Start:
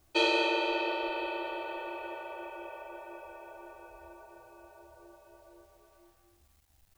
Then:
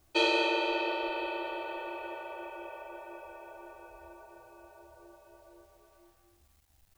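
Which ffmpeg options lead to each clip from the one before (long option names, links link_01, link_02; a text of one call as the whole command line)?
ffmpeg -i in.wav -af anull out.wav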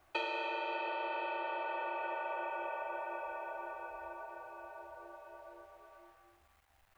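ffmpeg -i in.wav -filter_complex "[0:a]acrossover=split=570 2500:gain=0.178 1 0.158[link_01][link_02][link_03];[link_01][link_02][link_03]amix=inputs=3:normalize=0,acompressor=threshold=-43dB:ratio=10,volume=8.5dB" out.wav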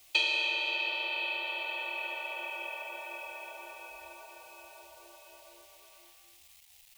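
ffmpeg -i in.wav -af "aexciter=amount=9.6:drive=6.5:freq=2300,volume=-4.5dB" out.wav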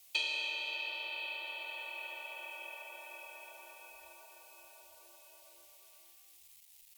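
ffmpeg -i in.wav -af "aemphasis=mode=production:type=cd,bandreject=frequency=50:width_type=h:width=6,bandreject=frequency=100:width_type=h:width=6,bandreject=frequency=150:width_type=h:width=6,bandreject=frequency=200:width_type=h:width=6,bandreject=frequency=250:width_type=h:width=6,bandreject=frequency=300:width_type=h:width=6,bandreject=frequency=350:width_type=h:width=6,volume=-8.5dB" out.wav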